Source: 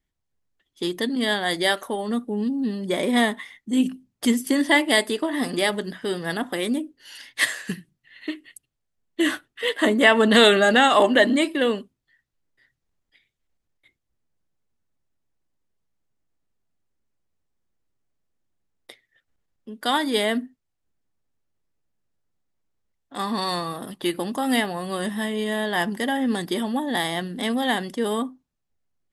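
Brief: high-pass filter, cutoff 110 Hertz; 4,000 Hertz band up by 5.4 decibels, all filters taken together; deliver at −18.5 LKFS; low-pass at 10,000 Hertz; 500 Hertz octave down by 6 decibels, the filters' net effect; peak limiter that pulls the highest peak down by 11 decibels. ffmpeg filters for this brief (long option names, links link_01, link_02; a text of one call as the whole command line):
ffmpeg -i in.wav -af "highpass=110,lowpass=10000,equalizer=frequency=500:width_type=o:gain=-8,equalizer=frequency=4000:width_type=o:gain=7,volume=6dB,alimiter=limit=-5dB:level=0:latency=1" out.wav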